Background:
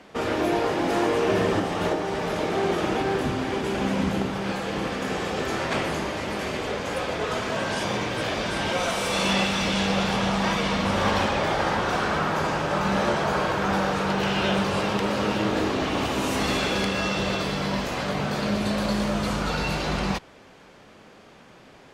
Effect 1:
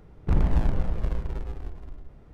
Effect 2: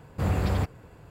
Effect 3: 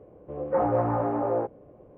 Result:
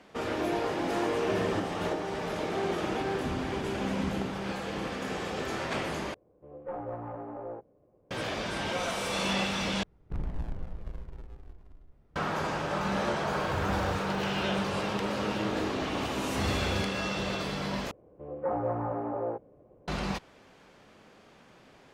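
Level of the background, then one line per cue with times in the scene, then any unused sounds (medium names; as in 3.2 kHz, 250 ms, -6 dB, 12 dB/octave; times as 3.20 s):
background -6.5 dB
3.00 s: add 1 -11 dB + high-pass 110 Hz
6.14 s: replace with 3 -13.5 dB + tracing distortion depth 0.049 ms
9.83 s: replace with 1 -12.5 dB
13.32 s: add 2 -10 dB + jump at every zero crossing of -36 dBFS
16.17 s: add 2 -8.5 dB
17.91 s: replace with 3 -6.5 dB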